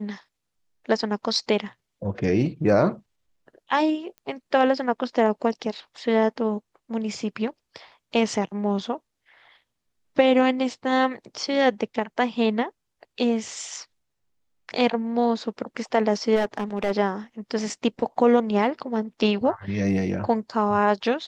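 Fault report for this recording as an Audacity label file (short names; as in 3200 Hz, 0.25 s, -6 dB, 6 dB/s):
4.180000	4.180000	pop -30 dBFS
16.350000	16.920000	clipped -18.5 dBFS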